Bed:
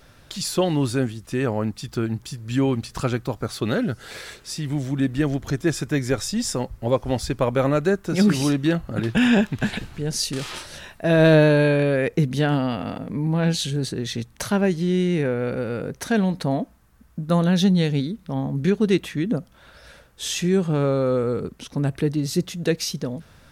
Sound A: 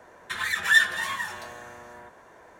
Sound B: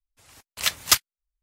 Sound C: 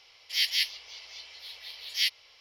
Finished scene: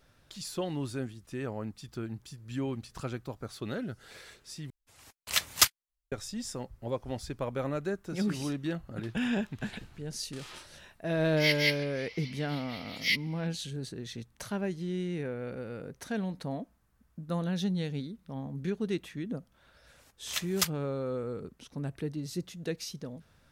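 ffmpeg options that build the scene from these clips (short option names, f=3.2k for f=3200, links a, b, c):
-filter_complex "[2:a]asplit=2[a][b];[0:a]volume=-13dB[c];[3:a]equalizer=f=2.1k:t=o:w=0.31:g=14[d];[c]asplit=2[e][f];[e]atrim=end=4.704[g];[a]atrim=end=1.42,asetpts=PTS-STARTPTS,volume=-4dB[h];[f]atrim=start=6.116[i];[d]atrim=end=2.4,asetpts=PTS-STARTPTS,volume=-5.5dB,afade=t=in:d=0.004:c=hsin,afade=t=out:st=2.396:d=0.004:c=hsin,adelay=11070[j];[b]atrim=end=1.42,asetpts=PTS-STARTPTS,volume=-11dB,afade=t=in:d=0.004:c=hsin,afade=t=out:st=1.416:d=0.004:c=hsin,adelay=19700[k];[g][h]acrossfade=d=0.004:c1=hsin:c2=hsin[l];[l][i]acrossfade=d=0.004:c1=hsin:c2=hsin[m];[m][j][k]amix=inputs=3:normalize=0"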